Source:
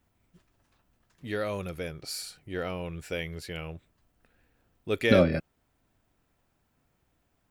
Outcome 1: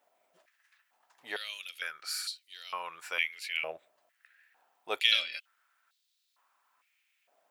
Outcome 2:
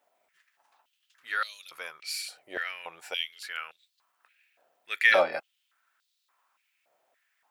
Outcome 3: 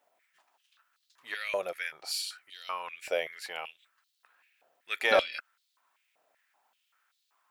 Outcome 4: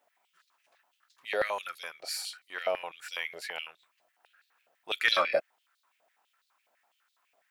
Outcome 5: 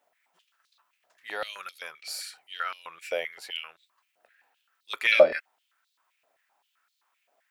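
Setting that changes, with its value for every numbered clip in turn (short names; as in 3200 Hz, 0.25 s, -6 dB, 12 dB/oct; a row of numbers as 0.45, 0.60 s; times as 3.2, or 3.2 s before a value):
stepped high-pass, rate: 2.2, 3.5, 5.2, 12, 7.7 Hz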